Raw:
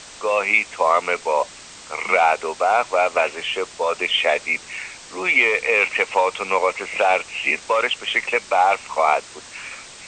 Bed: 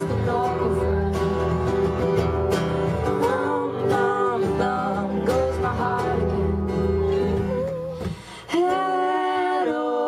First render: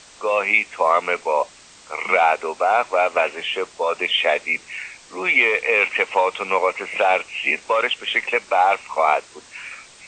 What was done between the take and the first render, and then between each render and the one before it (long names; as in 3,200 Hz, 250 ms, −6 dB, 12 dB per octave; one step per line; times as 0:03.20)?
noise reduction from a noise print 6 dB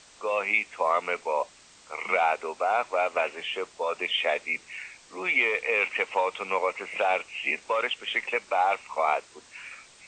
level −7.5 dB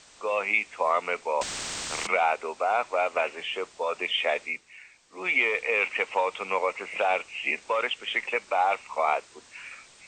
0:01.41–0:02.07: every bin compressed towards the loudest bin 4 to 1
0:04.45–0:05.27: duck −9 dB, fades 0.16 s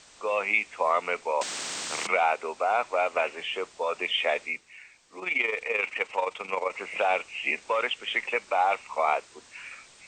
0:01.31–0:02.41: high-pass filter 270 Hz → 110 Hz
0:05.19–0:06.73: amplitude modulation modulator 23 Hz, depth 45%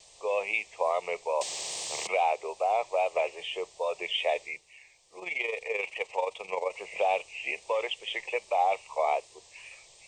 pitch vibrato 2.4 Hz 44 cents
phaser with its sweep stopped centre 600 Hz, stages 4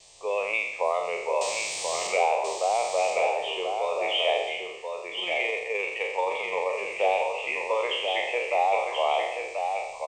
peak hold with a decay on every bin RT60 0.90 s
single-tap delay 1,033 ms −5.5 dB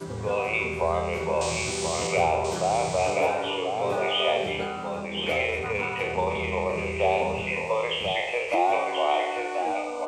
mix in bed −10.5 dB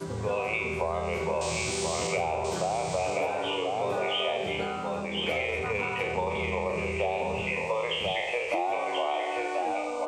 downward compressor, threshold −25 dBFS, peak gain reduction 7.5 dB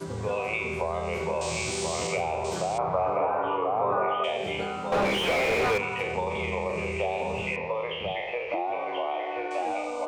0:02.78–0:04.24: low-pass with resonance 1,200 Hz, resonance Q 4
0:04.92–0:05.78: mid-hump overdrive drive 35 dB, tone 1,300 Hz, clips at −15.5 dBFS
0:07.56–0:09.51: high-frequency loss of the air 290 metres